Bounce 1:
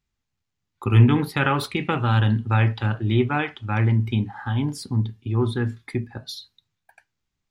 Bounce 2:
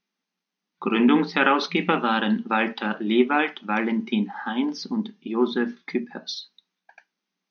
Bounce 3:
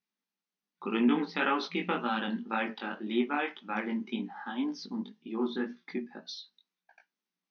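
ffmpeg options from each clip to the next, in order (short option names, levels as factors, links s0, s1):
-af "afftfilt=real='re*between(b*sr/4096,170,6500)':imag='im*between(b*sr/4096,170,6500)':win_size=4096:overlap=0.75,volume=1.41"
-af "flanger=delay=16.5:depth=5.2:speed=1.9,volume=0.473"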